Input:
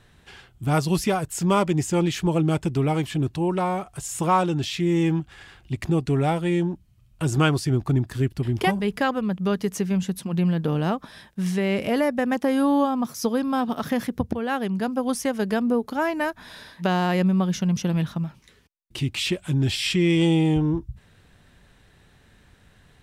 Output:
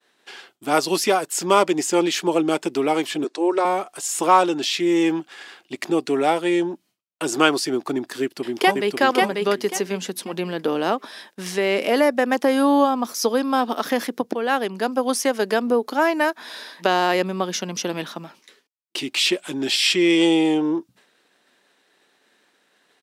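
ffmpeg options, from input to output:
-filter_complex "[0:a]asettb=1/sr,asplit=3[a][b][c];[a]atrim=end=3.244[d];[b]atrim=start=3.24:end=3.65,asetpts=PTS-STARTPTS,afade=t=in:d=0.004:c=qsin,afade=t=out:st=0.406:d=0.004:c=qsin,highpass=f=290:w=0.5412,highpass=f=290:w=1.3066,equalizer=f=440:t=q:w=4:g=5,equalizer=f=810:t=q:w=4:g=-4,equalizer=f=2.9k:t=q:w=4:g=-8,lowpass=f=8.8k:w=0.5412,lowpass=f=8.8k:w=1.3066[e];[c]atrim=start=3.646[f];[d][e]acrossfade=d=0.004:c1=hsin:c2=qsin[g];[g][f]acrossfade=d=0.004:c1=qsin:c2=hsin,asplit=2[h][i];[i]afade=t=in:st=8.21:d=0.01,afade=t=out:st=9:d=0.01,aecho=0:1:540|1080|1620|2160:0.749894|0.187474|0.0468684|0.0117171[j];[h][j]amix=inputs=2:normalize=0,highpass=f=290:w=0.5412,highpass=f=290:w=1.3066,agate=range=-33dB:threshold=-53dB:ratio=3:detection=peak,equalizer=f=4.8k:t=o:w=0.82:g=3.5,volume=5.5dB"

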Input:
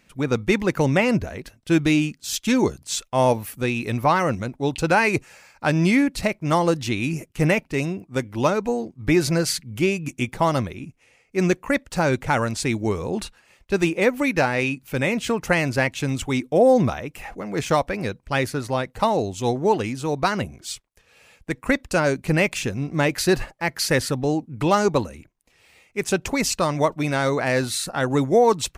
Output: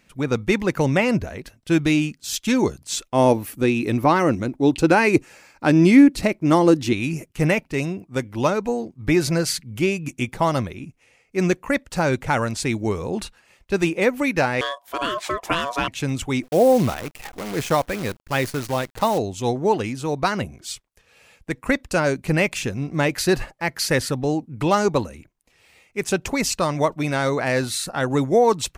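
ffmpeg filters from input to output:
-filter_complex "[0:a]asettb=1/sr,asplit=3[a][b][c];[a]atrim=end=2.924[d];[b]atrim=start=2.92:end=6.93,asetpts=PTS-STARTPTS,afade=t=in:d=0.004:c=qsin,afade=t=out:st=4.006:d=0.004:c=qsin,equalizer=f=310:t=o:w=0.77:g=10[e];[c]atrim=start=6.926[f];[d][e]acrossfade=d=0.004:c1=hsin:c2=qsin[g];[g][f]acrossfade=d=0.004:c1=qsin:c2=hsin,asettb=1/sr,asplit=3[h][i][j];[h]atrim=end=14.614[k];[i]atrim=start=14.61:end=15.88,asetpts=PTS-STARTPTS,afade=t=in:d=0.004:c=qsin,afade=t=out:st=1.266:d=0.004:c=qsin,aeval=exprs='val(0)*sin(2*PI*840*n/s)':c=same[l];[j]atrim=start=15.876[m];[k][l]acrossfade=d=0.004:c1=hsin:c2=qsin[n];[n][m]acrossfade=d=0.004:c1=qsin:c2=hsin,asplit=3[o][p][q];[o]afade=t=out:st=16.42:d=0.02[r];[p]acrusher=bits=6:dc=4:mix=0:aa=0.000001,afade=t=in:st=16.42:d=0.02,afade=t=out:st=19.17:d=0.02[s];[q]afade=t=in:st=19.17:d=0.02[t];[r][s][t]amix=inputs=3:normalize=0"

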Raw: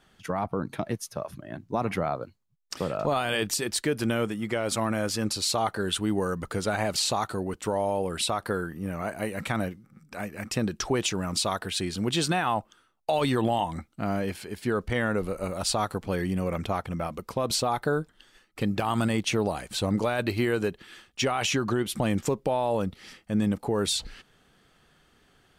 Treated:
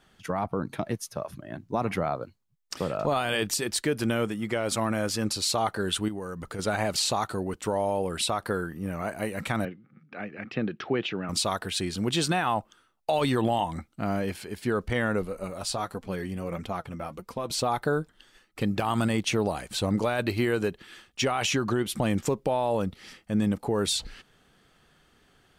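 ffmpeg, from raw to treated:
-filter_complex "[0:a]asettb=1/sr,asplit=3[a][b][c];[a]atrim=end=6.084[d];[b]atrim=start=6.08:end=6.59,asetpts=PTS-STARTPTS,afade=t=in:d=0.004:c=qsin,afade=t=out:st=0.506:d=0.004:c=qsin,acompressor=threshold=-35dB:ratio=2.5:attack=3.2:release=140:knee=1:detection=peak[e];[c]atrim=start=6.586[f];[d][e]acrossfade=d=0.004:c1=hsin:c2=qsin[g];[g][f]acrossfade=d=0.004:c1=qsin:c2=hsin,asettb=1/sr,asplit=3[h][i][j];[h]atrim=end=9.654[k];[i]atrim=start=9.65:end=11.29,asetpts=PTS-STARTPTS,afade=t=in:d=0.004:c=qsin,afade=t=out:st=1.636:d=0.004:c=qsin,highpass=f=130:w=0.5412,highpass=f=130:w=1.3066,equalizer=f=190:t=q:w=4:g=-3,equalizer=f=610:t=q:w=4:g=-3,equalizer=f=980:t=q:w=4:g=-8,lowpass=f=3.2k:w=0.5412,lowpass=f=3.2k:w=1.3066[l];[j]atrim=start=11.286[m];[k][l]acrossfade=d=0.004:c1=hsin:c2=qsin[n];[n][m]acrossfade=d=0.004:c1=qsin:c2=hsin,asplit=3[o][p][q];[o]afade=t=out:st=15.22:d=0.02[r];[p]flanger=delay=3.7:depth=5.4:regen=50:speed=1.5:shape=triangular,afade=t=in:st=15.22:d=0.02,afade=t=out:st=17.57:d=0.02[s];[q]afade=t=in:st=17.57:d=0.02[t];[r][s][t]amix=inputs=3:normalize=0"

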